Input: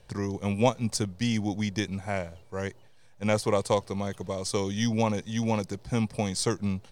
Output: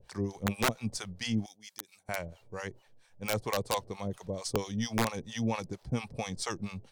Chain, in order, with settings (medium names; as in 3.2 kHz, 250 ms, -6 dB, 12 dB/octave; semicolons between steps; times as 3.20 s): harmonic tremolo 4.4 Hz, depth 100%, crossover 630 Hz; integer overflow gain 19.5 dB; 1.46–2.09 s: differentiator